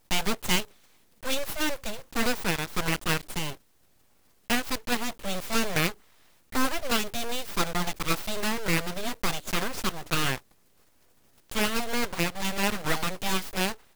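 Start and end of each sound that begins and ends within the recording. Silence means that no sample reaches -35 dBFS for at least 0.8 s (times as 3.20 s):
4.50–10.38 s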